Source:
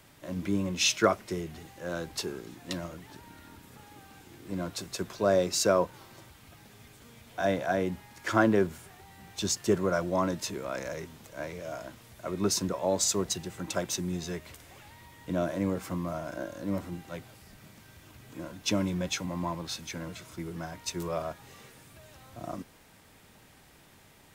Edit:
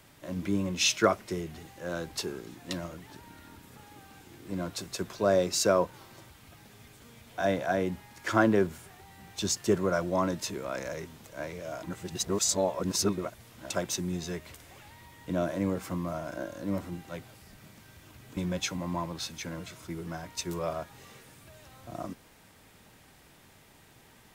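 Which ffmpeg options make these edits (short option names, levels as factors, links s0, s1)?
-filter_complex "[0:a]asplit=4[s0][s1][s2][s3];[s0]atrim=end=11.832[s4];[s1]atrim=start=11.828:end=13.702,asetpts=PTS-STARTPTS,areverse[s5];[s2]atrim=start=13.698:end=18.372[s6];[s3]atrim=start=18.858[s7];[s4][s5]acrossfade=d=0.004:c1=hsin:c2=hsin[s8];[s8][s6]acrossfade=d=0.004:c1=hsin:c2=hsin[s9];[s9][s7]acrossfade=d=0.004:c1=hsin:c2=hsin"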